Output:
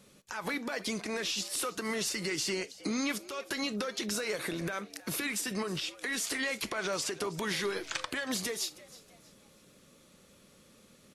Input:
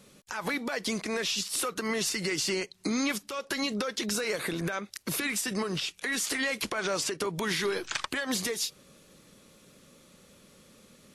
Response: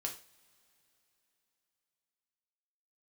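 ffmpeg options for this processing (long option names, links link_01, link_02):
-filter_complex "[0:a]asplit=4[link_01][link_02][link_03][link_04];[link_02]adelay=318,afreqshift=120,volume=-19dB[link_05];[link_03]adelay=636,afreqshift=240,volume=-28.1dB[link_06];[link_04]adelay=954,afreqshift=360,volume=-37.2dB[link_07];[link_01][link_05][link_06][link_07]amix=inputs=4:normalize=0,asplit=2[link_08][link_09];[1:a]atrim=start_sample=2205,atrim=end_sample=3528[link_10];[link_09][link_10]afir=irnorm=-1:irlink=0,volume=-11dB[link_11];[link_08][link_11]amix=inputs=2:normalize=0,volume=-5dB"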